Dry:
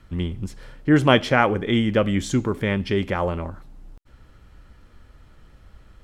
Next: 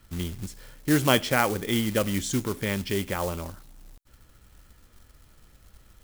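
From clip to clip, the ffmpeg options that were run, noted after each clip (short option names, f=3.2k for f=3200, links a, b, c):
-af "acrusher=bits=4:mode=log:mix=0:aa=0.000001,highshelf=f=4.8k:g=11.5,volume=-6dB"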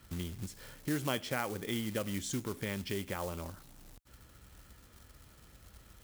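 -af "highpass=48,acompressor=threshold=-41dB:ratio=2"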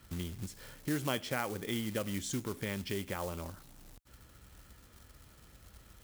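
-af anull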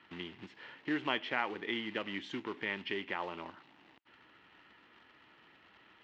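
-af "highpass=300,equalizer=f=320:t=q:w=4:g=4,equalizer=f=540:t=q:w=4:g=-6,equalizer=f=930:t=q:w=4:g=6,equalizer=f=1.9k:t=q:w=4:g=7,equalizer=f=2.8k:t=q:w=4:g=7,lowpass=f=3.5k:w=0.5412,lowpass=f=3.5k:w=1.3066"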